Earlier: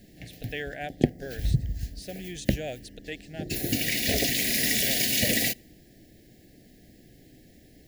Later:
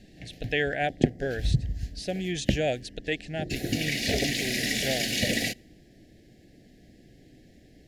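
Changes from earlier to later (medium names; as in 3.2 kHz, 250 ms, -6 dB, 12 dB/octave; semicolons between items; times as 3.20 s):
speech +8.5 dB; master: add distance through air 56 m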